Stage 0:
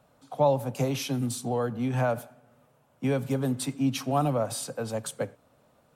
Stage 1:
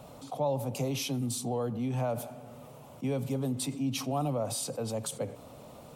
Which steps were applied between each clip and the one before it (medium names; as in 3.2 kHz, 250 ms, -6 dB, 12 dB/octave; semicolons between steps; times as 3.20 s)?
peaking EQ 1.6 kHz -11 dB 0.57 oct; level flattener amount 50%; trim -7.5 dB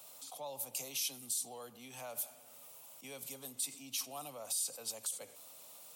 differentiator; peak limiter -32 dBFS, peak gain reduction 10.5 dB; trim +6 dB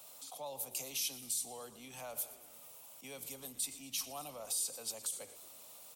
frequency-shifting echo 117 ms, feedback 57%, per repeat -93 Hz, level -17 dB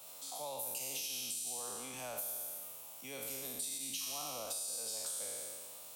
spectral sustain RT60 1.74 s; peak limiter -25.5 dBFS, peak gain reduction 4.5 dB; compression, threshold -37 dBFS, peak gain reduction 5.5 dB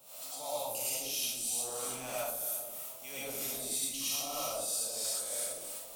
added noise violet -63 dBFS; harmonic tremolo 3.1 Hz, depth 70%, crossover 630 Hz; algorithmic reverb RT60 0.45 s, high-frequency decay 0.35×, pre-delay 65 ms, DRR -6.5 dB; trim +1.5 dB